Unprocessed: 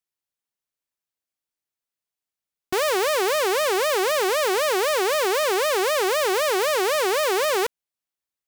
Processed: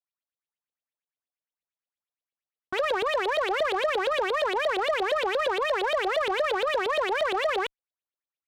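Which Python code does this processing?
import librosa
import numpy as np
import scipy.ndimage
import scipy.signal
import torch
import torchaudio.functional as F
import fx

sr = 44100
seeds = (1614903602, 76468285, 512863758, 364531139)

y = fx.filter_lfo_lowpass(x, sr, shape='saw_up', hz=8.6, low_hz=500.0, high_hz=4000.0, q=5.7)
y = 10.0 ** (-16.0 / 20.0) * np.tanh(y / 10.0 ** (-16.0 / 20.0))
y = fx.cheby_harmonics(y, sr, harmonics=(3,), levels_db=(-15,), full_scale_db=-16.0)
y = y * 10.0 ** (-5.0 / 20.0)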